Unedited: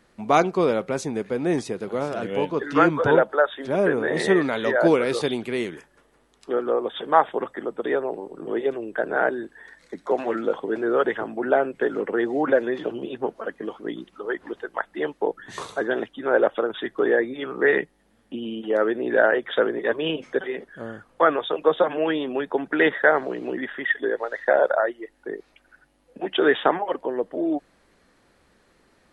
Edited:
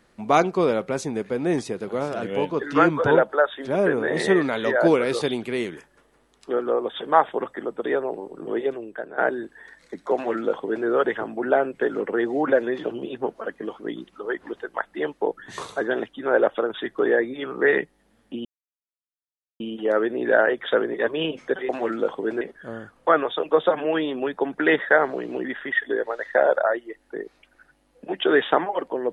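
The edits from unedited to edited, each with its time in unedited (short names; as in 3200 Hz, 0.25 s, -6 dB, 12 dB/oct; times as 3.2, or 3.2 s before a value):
8.6–9.18 fade out, to -15.5 dB
10.14–10.86 copy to 20.54
18.45 insert silence 1.15 s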